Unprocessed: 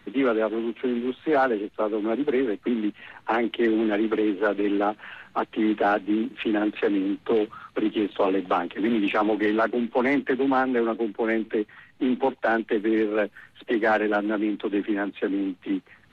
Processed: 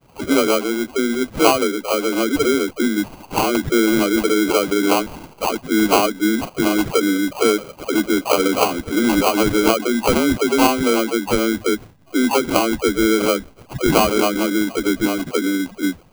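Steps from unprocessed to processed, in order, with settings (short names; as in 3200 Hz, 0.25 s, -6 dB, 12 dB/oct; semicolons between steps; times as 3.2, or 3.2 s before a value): spectral gate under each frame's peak -30 dB strong; dispersion lows, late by 0.147 s, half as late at 920 Hz; sample-rate reducer 1800 Hz, jitter 0%; gain +6.5 dB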